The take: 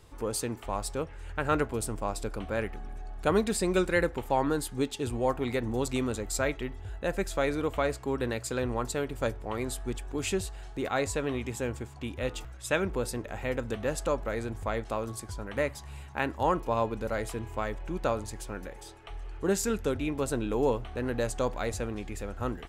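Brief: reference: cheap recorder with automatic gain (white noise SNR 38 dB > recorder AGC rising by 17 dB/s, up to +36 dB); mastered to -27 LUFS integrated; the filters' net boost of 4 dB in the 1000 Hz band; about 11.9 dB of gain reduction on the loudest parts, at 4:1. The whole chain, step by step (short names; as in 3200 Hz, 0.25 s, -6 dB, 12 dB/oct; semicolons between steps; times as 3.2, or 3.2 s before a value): bell 1000 Hz +5 dB; compressor 4:1, threshold -34 dBFS; white noise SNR 38 dB; recorder AGC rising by 17 dB/s, up to +36 dB; gain +9.5 dB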